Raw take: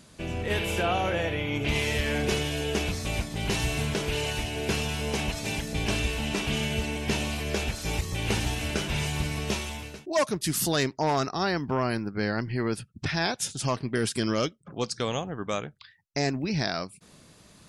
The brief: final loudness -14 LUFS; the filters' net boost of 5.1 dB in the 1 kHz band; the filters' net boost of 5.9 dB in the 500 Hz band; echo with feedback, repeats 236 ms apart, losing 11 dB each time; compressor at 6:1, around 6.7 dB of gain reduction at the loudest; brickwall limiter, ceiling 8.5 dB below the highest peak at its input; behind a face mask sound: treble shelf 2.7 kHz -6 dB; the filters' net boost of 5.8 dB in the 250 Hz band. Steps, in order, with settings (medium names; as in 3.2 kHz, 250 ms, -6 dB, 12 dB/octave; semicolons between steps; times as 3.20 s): peaking EQ 250 Hz +6 dB; peaking EQ 500 Hz +4.5 dB; peaking EQ 1 kHz +5.5 dB; compression 6:1, threshold -22 dBFS; peak limiter -20 dBFS; treble shelf 2.7 kHz -6 dB; feedback delay 236 ms, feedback 28%, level -11 dB; trim +16.5 dB